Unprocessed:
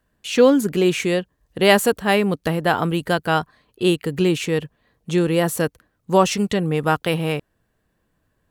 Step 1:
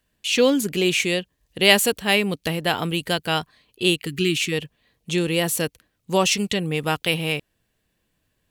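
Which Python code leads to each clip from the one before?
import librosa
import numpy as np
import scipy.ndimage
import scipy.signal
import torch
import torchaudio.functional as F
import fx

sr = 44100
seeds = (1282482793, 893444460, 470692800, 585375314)

y = fx.spec_box(x, sr, start_s=4.07, length_s=0.45, low_hz=430.0, high_hz=1100.0, gain_db=-29)
y = fx.high_shelf_res(y, sr, hz=1900.0, db=7.5, q=1.5)
y = y * librosa.db_to_amplitude(-4.0)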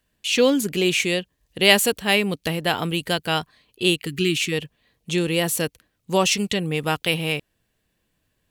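y = x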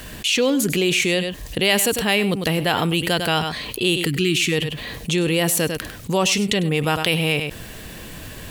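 y = x + 10.0 ** (-18.0 / 20.0) * np.pad(x, (int(100 * sr / 1000.0), 0))[:len(x)]
y = fx.env_flatten(y, sr, amount_pct=70)
y = y * librosa.db_to_amplitude(-4.5)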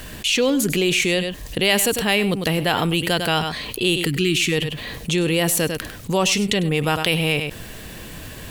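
y = fx.dmg_noise_colour(x, sr, seeds[0], colour='brown', level_db=-48.0)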